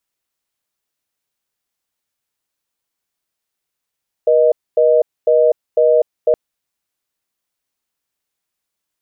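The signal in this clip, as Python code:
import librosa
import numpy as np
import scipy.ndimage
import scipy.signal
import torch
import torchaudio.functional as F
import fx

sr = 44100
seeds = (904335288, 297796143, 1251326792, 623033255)

y = fx.call_progress(sr, length_s=2.07, kind='reorder tone', level_db=-11.5)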